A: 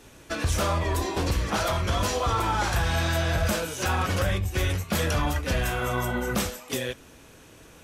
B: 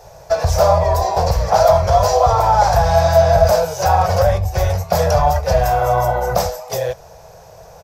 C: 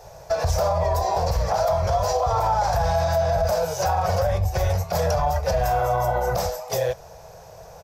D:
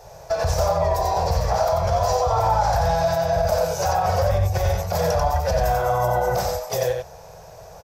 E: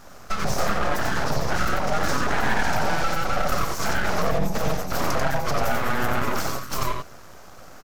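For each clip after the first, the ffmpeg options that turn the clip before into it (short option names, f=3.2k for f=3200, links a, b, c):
-af "firequalizer=gain_entry='entry(170,0);entry(240,-29);entry(460,2);entry(680,13);entry(1200,-4);entry(3100,-14);entry(5000,2);entry(9300,-13);entry(14000,1)':delay=0.05:min_phase=1,volume=8.5dB"
-af "alimiter=limit=-11dB:level=0:latency=1:release=74,volume=-2.5dB"
-af "aecho=1:1:91:0.631"
-af "aeval=exprs='abs(val(0))':c=same"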